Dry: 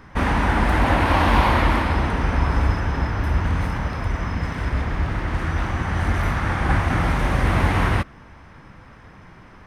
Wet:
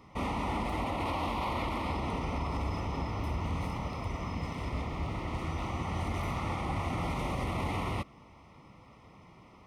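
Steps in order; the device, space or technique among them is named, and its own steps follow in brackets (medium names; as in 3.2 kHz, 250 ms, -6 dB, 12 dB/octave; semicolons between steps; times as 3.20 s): PA system with an anti-feedback notch (high-pass 110 Hz 6 dB/octave; Butterworth band-stop 1.6 kHz, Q 2.2; peak limiter -17 dBFS, peak gain reduction 9 dB); trim -7.5 dB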